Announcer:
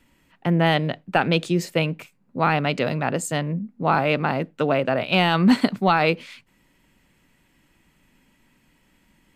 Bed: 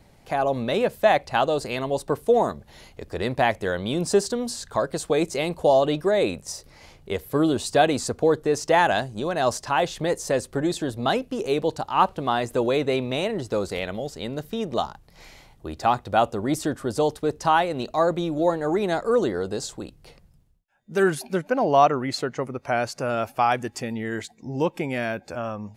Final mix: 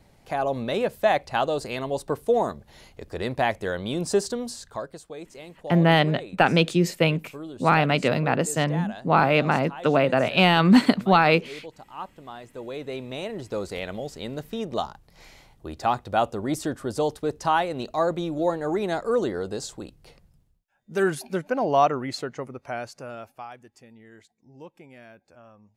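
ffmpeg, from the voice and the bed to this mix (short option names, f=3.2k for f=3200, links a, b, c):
-filter_complex "[0:a]adelay=5250,volume=1dB[a];[1:a]volume=12dB,afade=t=out:st=4.32:d=0.73:silence=0.188365,afade=t=in:st=12.49:d=1.48:silence=0.188365,afade=t=out:st=21.86:d=1.64:silence=0.125893[b];[a][b]amix=inputs=2:normalize=0"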